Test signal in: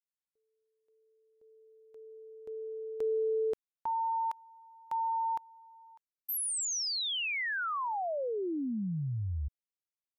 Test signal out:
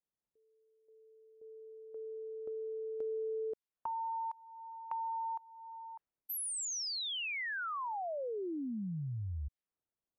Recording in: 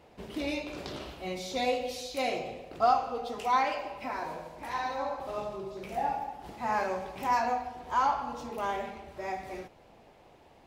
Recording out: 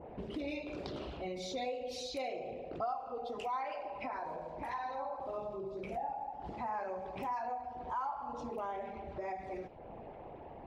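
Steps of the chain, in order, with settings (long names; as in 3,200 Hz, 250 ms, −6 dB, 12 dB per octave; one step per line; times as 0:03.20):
spectral envelope exaggerated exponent 1.5
downward compressor 3 to 1, threshold −51 dBFS
low-pass that shuts in the quiet parts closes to 650 Hz, open at −46 dBFS
level +8.5 dB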